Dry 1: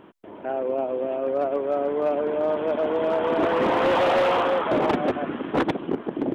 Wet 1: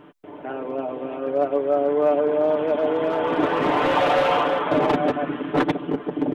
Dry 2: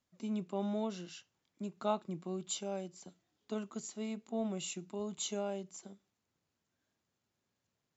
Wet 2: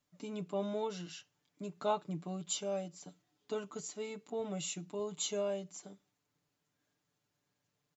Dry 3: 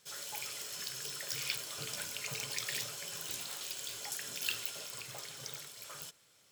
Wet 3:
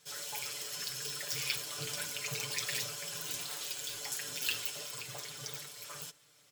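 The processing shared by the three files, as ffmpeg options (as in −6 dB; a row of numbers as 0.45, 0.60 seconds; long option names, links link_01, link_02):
-af "aecho=1:1:6.8:0.74"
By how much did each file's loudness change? +2.0, +0.5, +2.0 LU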